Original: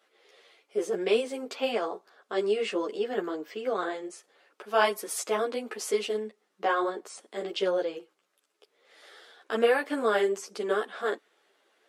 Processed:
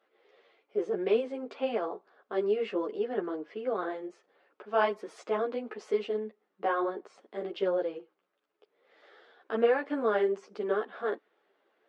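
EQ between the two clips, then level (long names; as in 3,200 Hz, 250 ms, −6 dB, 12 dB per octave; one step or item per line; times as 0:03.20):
head-to-tape spacing loss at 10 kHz 32 dB
0.0 dB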